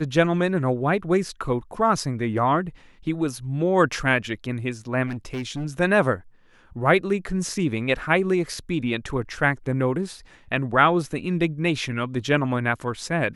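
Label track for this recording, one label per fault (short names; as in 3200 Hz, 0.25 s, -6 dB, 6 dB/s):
5.060000	5.660000	clipped -25 dBFS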